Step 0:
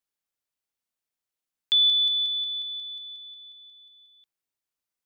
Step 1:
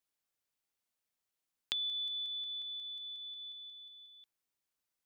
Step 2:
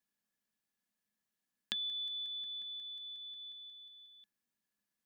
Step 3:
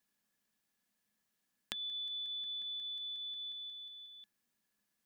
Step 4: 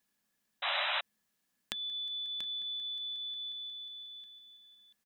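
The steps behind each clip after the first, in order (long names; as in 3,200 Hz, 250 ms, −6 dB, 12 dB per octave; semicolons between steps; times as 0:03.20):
downward compressor 2.5 to 1, threshold −34 dBFS, peak gain reduction 10.5 dB; dynamic equaliser 3,800 Hz, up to −7 dB, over −44 dBFS, Q 1.1
hollow resonant body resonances 210/1,700 Hz, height 17 dB, ringing for 70 ms; level −2 dB
downward compressor, threshold −45 dBFS, peak gain reduction 11.5 dB; level +5.5 dB
single-tap delay 686 ms −10.5 dB; sound drawn into the spectrogram noise, 0:00.62–0:01.01, 550–4,000 Hz −35 dBFS; level +2.5 dB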